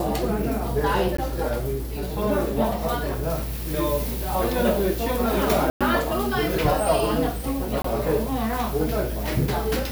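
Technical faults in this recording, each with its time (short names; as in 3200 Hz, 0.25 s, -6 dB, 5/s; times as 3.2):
1.17–1.18 gap 14 ms
5.7–5.81 gap 0.106 s
7.82–7.84 gap 24 ms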